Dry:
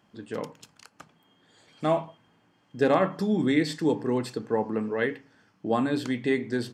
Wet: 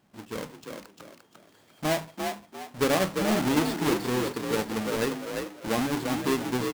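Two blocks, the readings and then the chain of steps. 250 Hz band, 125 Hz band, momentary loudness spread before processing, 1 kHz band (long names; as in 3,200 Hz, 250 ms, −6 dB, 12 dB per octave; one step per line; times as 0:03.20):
−1.0 dB, 0.0 dB, 13 LU, 0.0 dB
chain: each half-wave held at its own peak
echo with shifted repeats 348 ms, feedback 34%, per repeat +44 Hz, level −5 dB
level −6 dB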